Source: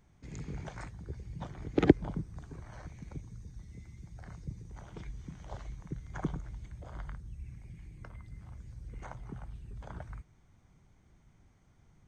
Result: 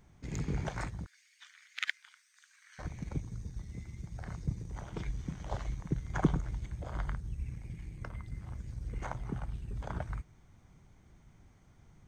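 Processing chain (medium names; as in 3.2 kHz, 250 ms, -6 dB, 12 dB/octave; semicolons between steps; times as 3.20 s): 1.06–2.79 s: steep high-pass 1.6 kHz 36 dB/octave; in parallel at -5 dB: crossover distortion -47.5 dBFS; on the sum: trim +3.5 dB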